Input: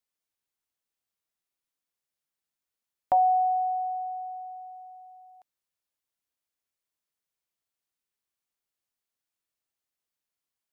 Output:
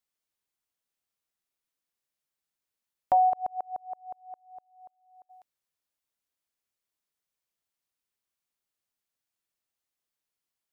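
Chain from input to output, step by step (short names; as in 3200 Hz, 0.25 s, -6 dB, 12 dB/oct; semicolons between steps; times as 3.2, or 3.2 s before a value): 3.29–5.29 dB-ramp tremolo swelling 8.1 Hz -> 2.5 Hz, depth 37 dB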